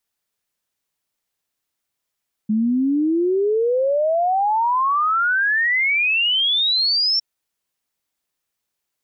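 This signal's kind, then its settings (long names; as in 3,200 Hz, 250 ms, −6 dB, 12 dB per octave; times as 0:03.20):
exponential sine sweep 210 Hz → 5,500 Hz 4.71 s −15.5 dBFS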